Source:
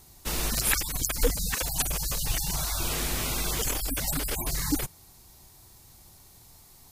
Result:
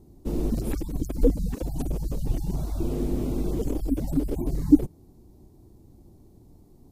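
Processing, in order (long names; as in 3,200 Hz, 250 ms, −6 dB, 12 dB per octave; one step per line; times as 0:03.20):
drawn EQ curve 140 Hz 0 dB, 300 Hz +9 dB, 1,600 Hz −24 dB
level +4.5 dB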